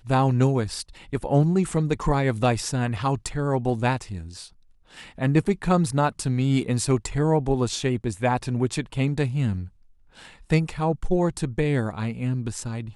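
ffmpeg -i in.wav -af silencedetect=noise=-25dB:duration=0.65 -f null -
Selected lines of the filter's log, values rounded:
silence_start: 4.18
silence_end: 5.21 | silence_duration: 1.03
silence_start: 9.60
silence_end: 10.51 | silence_duration: 0.91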